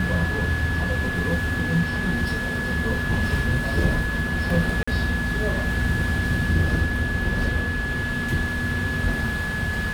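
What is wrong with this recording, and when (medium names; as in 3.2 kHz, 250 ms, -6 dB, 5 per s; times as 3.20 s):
whine 1.7 kHz -27 dBFS
4.83–4.88 s: dropout 45 ms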